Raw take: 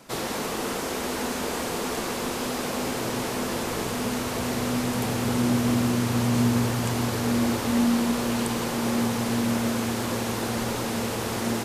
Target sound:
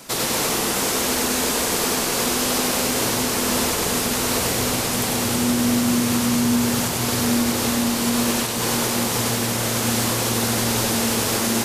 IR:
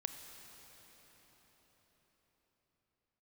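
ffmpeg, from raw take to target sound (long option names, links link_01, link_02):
-filter_complex "[0:a]highshelf=frequency=3100:gain=10,alimiter=limit=-17.5dB:level=0:latency=1:release=259,asplit=2[link_01][link_02];[1:a]atrim=start_sample=2205,adelay=96[link_03];[link_02][link_03]afir=irnorm=-1:irlink=0,volume=-1.5dB[link_04];[link_01][link_04]amix=inputs=2:normalize=0,volume=5dB"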